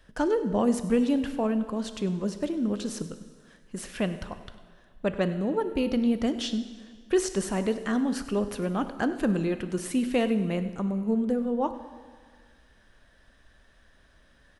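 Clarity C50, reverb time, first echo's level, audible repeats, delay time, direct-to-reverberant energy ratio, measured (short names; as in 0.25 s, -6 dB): 11.0 dB, 1.7 s, -18.0 dB, 1, 99 ms, 10.0 dB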